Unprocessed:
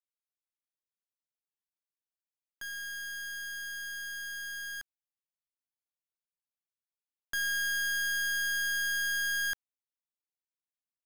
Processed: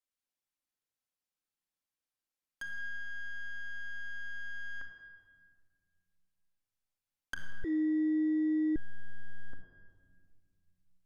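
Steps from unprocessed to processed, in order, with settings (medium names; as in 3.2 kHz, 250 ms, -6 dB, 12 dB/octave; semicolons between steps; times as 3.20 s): low-pass that closes with the level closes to 470 Hz, closed at -35.5 dBFS; simulated room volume 3200 m³, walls mixed, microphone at 2.1 m; 7.64–8.76 s: frequency shift +310 Hz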